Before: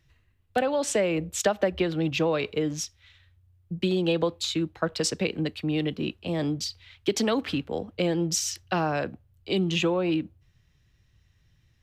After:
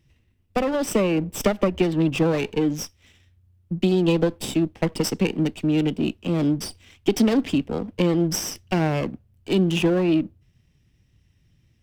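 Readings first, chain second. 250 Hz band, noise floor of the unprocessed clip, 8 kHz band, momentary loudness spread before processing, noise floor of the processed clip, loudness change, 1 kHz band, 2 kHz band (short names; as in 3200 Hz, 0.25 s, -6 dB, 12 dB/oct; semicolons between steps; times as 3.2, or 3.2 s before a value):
+7.0 dB, -65 dBFS, -1.0 dB, 7 LU, -63 dBFS, +4.5 dB, +1.0 dB, +1.0 dB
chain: minimum comb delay 0.37 ms; bell 240 Hz +8 dB 1.4 oct; gain +1 dB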